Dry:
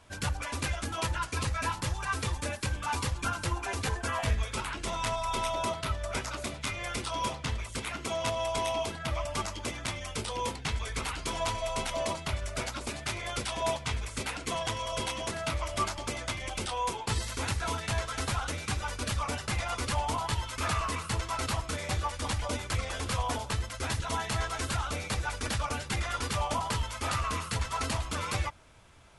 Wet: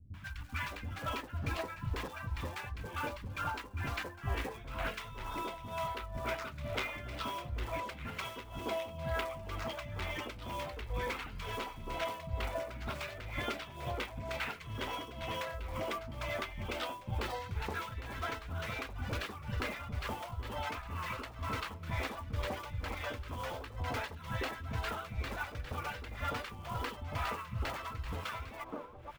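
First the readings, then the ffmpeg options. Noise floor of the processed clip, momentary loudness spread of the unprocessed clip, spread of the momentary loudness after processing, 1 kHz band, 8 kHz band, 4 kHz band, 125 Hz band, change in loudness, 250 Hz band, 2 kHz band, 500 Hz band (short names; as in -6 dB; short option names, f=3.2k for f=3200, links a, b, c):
-49 dBFS, 4 LU, 3 LU, -7.0 dB, -17.5 dB, -9.0 dB, -6.5 dB, -6.5 dB, -6.0 dB, -5.0 dB, -5.5 dB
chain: -filter_complex "[0:a]lowpass=2.7k,acontrast=77,lowshelf=f=130:g=-2.5,acompressor=threshold=-32dB:ratio=10,tremolo=f=2.1:d=0.82,acrusher=bits=5:mode=log:mix=0:aa=0.000001,acrossover=split=220|980[a][b][c];[c]adelay=140[d];[b]adelay=610[e];[a][e][d]amix=inputs=3:normalize=0,volume=1.5dB"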